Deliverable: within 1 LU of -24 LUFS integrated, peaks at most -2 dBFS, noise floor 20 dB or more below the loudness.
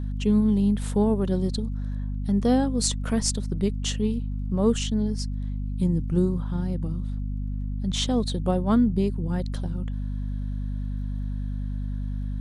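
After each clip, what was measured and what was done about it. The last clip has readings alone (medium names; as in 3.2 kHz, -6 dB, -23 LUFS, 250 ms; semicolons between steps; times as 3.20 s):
tick rate 18 per s; hum 50 Hz; highest harmonic 250 Hz; hum level -26 dBFS; loudness -26.5 LUFS; peak level -7.5 dBFS; loudness target -24.0 LUFS
-> de-click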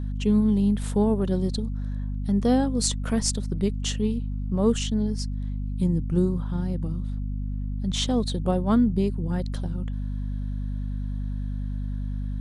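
tick rate 0 per s; hum 50 Hz; highest harmonic 250 Hz; hum level -26 dBFS
-> de-hum 50 Hz, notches 5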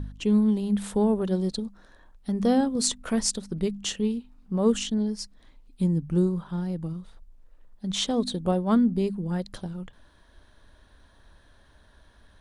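hum not found; loudness -26.5 LUFS; peak level -7.5 dBFS; loudness target -24.0 LUFS
-> trim +2.5 dB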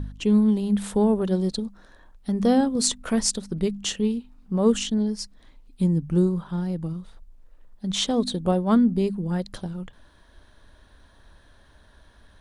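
loudness -24.0 LUFS; peak level -5.0 dBFS; noise floor -55 dBFS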